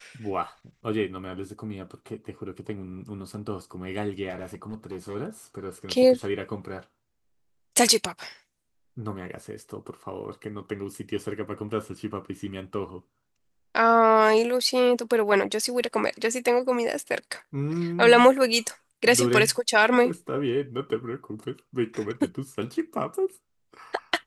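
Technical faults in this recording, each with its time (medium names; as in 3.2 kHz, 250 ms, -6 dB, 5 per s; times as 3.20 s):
4.29–5.16 s: clipped -30 dBFS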